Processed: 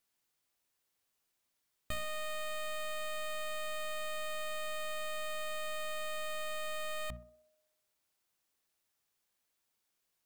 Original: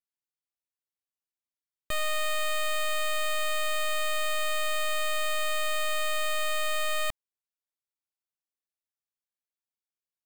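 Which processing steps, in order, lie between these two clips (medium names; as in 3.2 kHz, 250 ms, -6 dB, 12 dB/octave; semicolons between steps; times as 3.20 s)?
hum notches 60/120/180/240 Hz; peak limiter -30.5 dBFS, peak gain reduction 4.5 dB; integer overflow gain 36 dB; band-passed feedback delay 63 ms, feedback 70%, band-pass 490 Hz, level -15 dB; trim +13 dB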